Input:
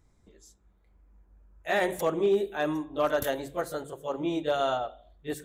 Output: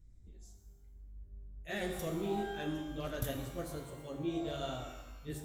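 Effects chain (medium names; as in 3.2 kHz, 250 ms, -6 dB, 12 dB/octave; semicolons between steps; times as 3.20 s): flange 1.2 Hz, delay 6.6 ms, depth 7.5 ms, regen +45%; amplifier tone stack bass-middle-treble 10-0-1; pitch-shifted reverb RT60 1.1 s, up +12 st, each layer -8 dB, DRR 5 dB; trim +17.5 dB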